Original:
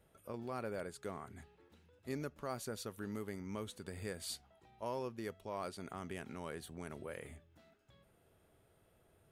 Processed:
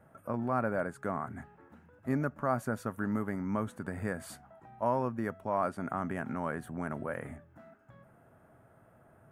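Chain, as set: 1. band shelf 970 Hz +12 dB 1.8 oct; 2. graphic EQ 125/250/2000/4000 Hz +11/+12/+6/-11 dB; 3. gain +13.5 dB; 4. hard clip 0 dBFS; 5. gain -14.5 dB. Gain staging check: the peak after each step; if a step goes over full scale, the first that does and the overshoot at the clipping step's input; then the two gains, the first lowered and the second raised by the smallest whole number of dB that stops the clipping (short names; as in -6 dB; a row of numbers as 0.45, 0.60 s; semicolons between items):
-18.5, -16.0, -2.5, -2.5, -17.0 dBFS; no overload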